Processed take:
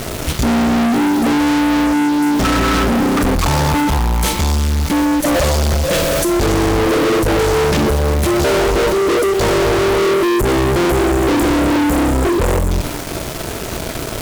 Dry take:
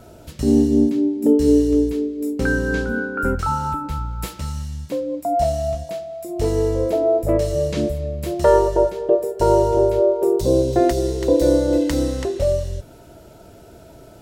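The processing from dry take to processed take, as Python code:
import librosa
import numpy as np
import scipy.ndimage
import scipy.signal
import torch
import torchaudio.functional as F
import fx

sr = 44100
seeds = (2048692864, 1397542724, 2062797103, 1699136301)

p1 = fx.dmg_noise_colour(x, sr, seeds[0], colour='pink', level_db=-47.0)
p2 = fx.formant_shift(p1, sr, semitones=-3)
p3 = fx.spec_erase(p2, sr, start_s=10.07, length_s=2.64, low_hz=1400.0, high_hz=6900.0)
p4 = fx.fuzz(p3, sr, gain_db=38.0, gate_db=-44.0)
y = p4 + fx.echo_single(p4, sr, ms=1106, db=-21.5, dry=0)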